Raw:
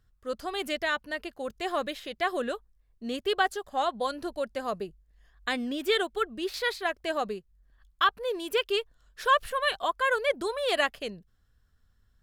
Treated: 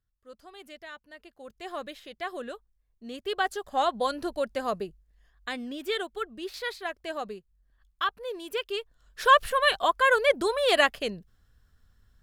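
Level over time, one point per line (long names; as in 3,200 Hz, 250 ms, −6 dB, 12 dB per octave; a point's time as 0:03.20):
0:01.09 −15 dB
0:01.74 −6.5 dB
0:03.13 −6.5 dB
0:03.71 +2.5 dB
0:04.68 +2.5 dB
0:05.49 −4.5 dB
0:08.78 −4.5 dB
0:09.24 +4.5 dB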